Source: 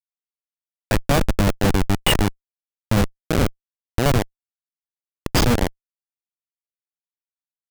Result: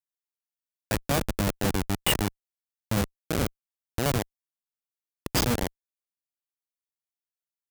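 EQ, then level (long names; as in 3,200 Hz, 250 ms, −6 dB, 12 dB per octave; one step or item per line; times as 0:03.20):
high-pass filter 56 Hz 6 dB per octave
high-shelf EQ 6,400 Hz +7.5 dB
−7.5 dB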